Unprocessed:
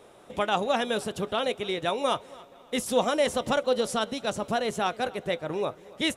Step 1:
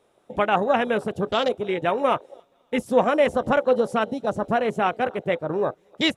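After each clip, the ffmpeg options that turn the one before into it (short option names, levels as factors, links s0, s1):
-af "afwtdn=0.0178,volume=1.88"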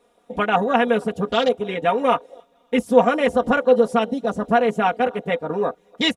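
-af "aecho=1:1:4.2:0.91"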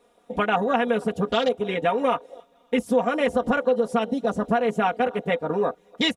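-af "acompressor=threshold=0.126:ratio=4"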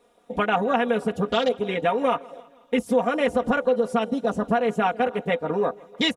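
-af "aecho=1:1:162|324|486|648:0.0631|0.0347|0.0191|0.0105"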